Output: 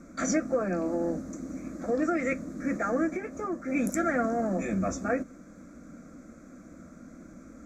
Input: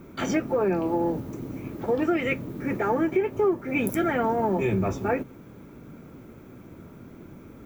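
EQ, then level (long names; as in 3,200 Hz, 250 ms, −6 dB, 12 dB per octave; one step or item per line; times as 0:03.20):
low-pass with resonance 6,900 Hz, resonance Q 3.8
phaser with its sweep stopped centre 600 Hz, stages 8
0.0 dB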